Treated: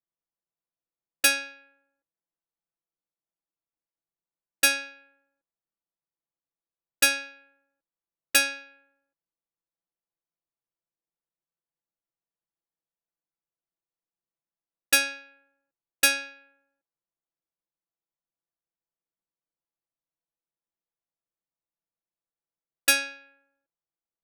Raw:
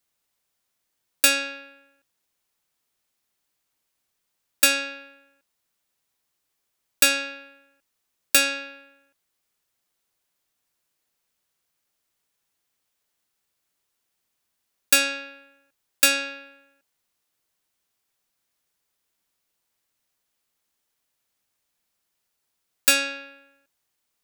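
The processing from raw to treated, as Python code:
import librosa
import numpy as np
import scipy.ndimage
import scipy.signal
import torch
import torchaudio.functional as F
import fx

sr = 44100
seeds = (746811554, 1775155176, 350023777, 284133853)

y = fx.env_lowpass(x, sr, base_hz=1000.0, full_db=-22.0)
y = y + 0.84 * np.pad(y, (int(6.0 * sr / 1000.0), 0))[:len(y)]
y = fx.upward_expand(y, sr, threshold_db=-36.0, expansion=1.5)
y = F.gain(torch.from_numpy(y), -3.5).numpy()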